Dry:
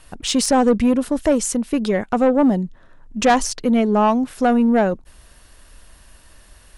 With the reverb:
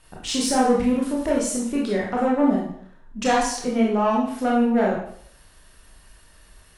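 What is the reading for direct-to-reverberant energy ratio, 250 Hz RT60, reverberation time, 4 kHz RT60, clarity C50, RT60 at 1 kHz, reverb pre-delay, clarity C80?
-4.0 dB, 0.55 s, 0.65 s, 0.55 s, 3.0 dB, 0.60 s, 22 ms, 7.0 dB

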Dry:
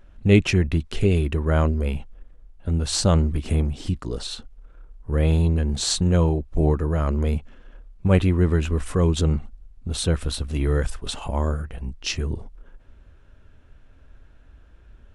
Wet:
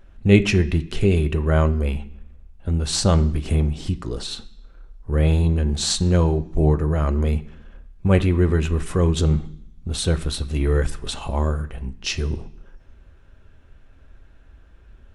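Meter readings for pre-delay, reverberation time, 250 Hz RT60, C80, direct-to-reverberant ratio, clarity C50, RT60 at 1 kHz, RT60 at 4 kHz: 3 ms, 0.65 s, 0.90 s, 19.5 dB, 8.0 dB, 17.0 dB, 0.60 s, 0.80 s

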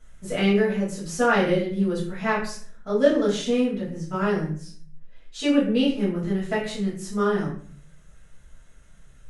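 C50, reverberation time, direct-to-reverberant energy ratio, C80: 5.0 dB, 0.50 s, -9.0 dB, 9.5 dB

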